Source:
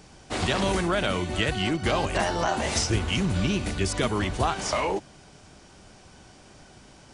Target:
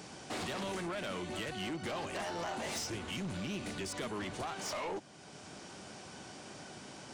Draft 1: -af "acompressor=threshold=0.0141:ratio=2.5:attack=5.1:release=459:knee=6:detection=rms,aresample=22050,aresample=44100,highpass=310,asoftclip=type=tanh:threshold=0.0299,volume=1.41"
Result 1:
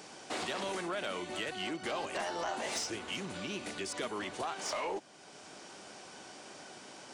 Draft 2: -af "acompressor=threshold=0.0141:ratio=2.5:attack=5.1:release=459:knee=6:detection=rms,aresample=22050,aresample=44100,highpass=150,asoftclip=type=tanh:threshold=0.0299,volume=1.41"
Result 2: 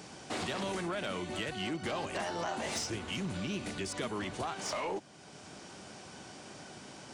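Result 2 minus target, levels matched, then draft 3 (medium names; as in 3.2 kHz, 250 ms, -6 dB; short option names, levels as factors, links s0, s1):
saturation: distortion -7 dB
-af "acompressor=threshold=0.0141:ratio=2.5:attack=5.1:release=459:knee=6:detection=rms,aresample=22050,aresample=44100,highpass=150,asoftclip=type=tanh:threshold=0.0141,volume=1.41"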